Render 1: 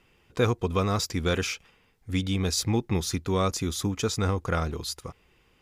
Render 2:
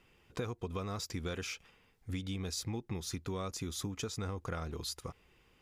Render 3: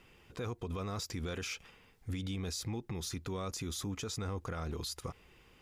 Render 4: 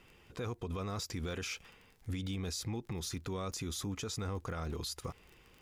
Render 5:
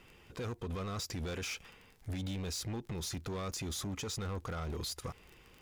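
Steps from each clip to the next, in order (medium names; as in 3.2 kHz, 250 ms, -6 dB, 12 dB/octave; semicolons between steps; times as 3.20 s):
compression, threshold -32 dBFS, peak gain reduction 13.5 dB; trim -3.5 dB
peak limiter -35.5 dBFS, peak gain reduction 10.5 dB; trim +5 dB
crackle 24 per s -46 dBFS
hard clipper -37 dBFS, distortion -12 dB; trim +2 dB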